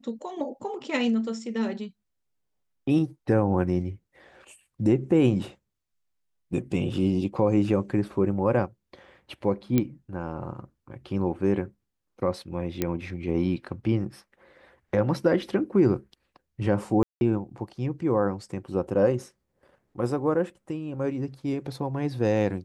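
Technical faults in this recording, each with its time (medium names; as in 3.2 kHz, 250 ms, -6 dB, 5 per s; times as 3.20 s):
9.78 s: pop -10 dBFS
12.82 s: pop -11 dBFS
17.03–17.21 s: dropout 181 ms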